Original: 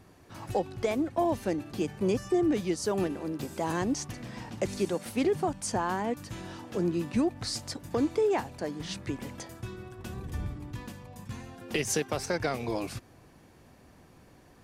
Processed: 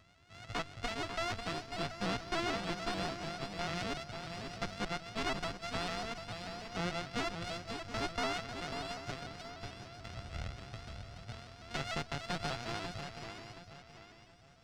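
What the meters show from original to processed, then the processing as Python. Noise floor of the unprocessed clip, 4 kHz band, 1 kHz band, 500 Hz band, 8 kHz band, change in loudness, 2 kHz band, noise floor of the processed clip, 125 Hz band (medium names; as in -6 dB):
-57 dBFS, +0.5 dB, -4.0 dB, -11.5 dB, -11.0 dB, -8.0 dB, -0.5 dB, -59 dBFS, -6.5 dB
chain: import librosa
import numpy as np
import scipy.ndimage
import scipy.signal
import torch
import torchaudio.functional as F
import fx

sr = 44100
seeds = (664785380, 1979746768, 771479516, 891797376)

y = np.r_[np.sort(x[:len(x) // 64 * 64].reshape(-1, 64), axis=1).ravel(), x[len(x) // 64 * 64:]]
y = fx.cheby_harmonics(y, sr, harmonics=(4,), levels_db=(-8,), full_scale_db=-16.5)
y = fx.tone_stack(y, sr, knobs='5-5-5')
y = 10.0 ** (-26.0 / 20.0) * np.tanh(y / 10.0 ** (-26.0 / 20.0))
y = fx.air_absorb(y, sr, metres=130.0)
y = fx.echo_swing(y, sr, ms=724, ratio=3, feedback_pct=32, wet_db=-7)
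y = fx.vibrato_shape(y, sr, shape='saw_up', rate_hz=6.8, depth_cents=100.0)
y = F.gain(torch.from_numpy(y), 6.5).numpy()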